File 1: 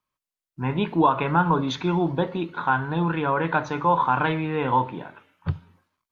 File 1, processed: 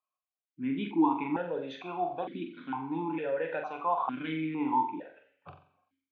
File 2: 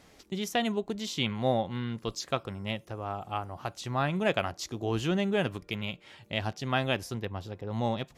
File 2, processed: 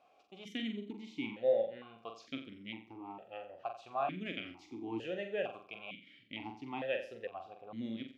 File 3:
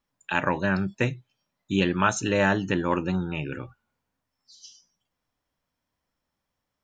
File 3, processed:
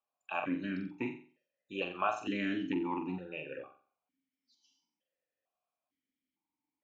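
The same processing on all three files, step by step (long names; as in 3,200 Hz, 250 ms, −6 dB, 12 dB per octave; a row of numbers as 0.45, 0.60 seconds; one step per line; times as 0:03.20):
on a send: flutter between parallel walls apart 7.6 metres, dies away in 0.42 s
on the sum: formant filter that steps through the vowels 2.2 Hz
level +1.5 dB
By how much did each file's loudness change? −8.5, −8.0, −11.0 LU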